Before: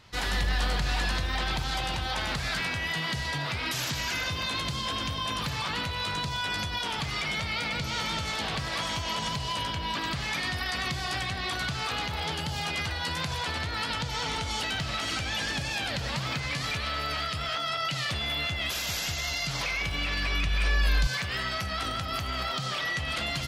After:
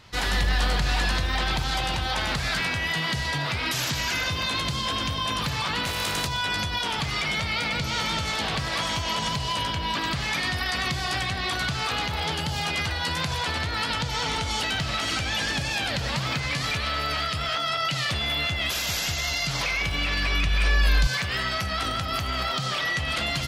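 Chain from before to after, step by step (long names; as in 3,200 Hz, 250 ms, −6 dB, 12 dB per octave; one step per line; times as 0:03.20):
0:05.85–0:06.26: compressing power law on the bin magnitudes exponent 0.56
level +4 dB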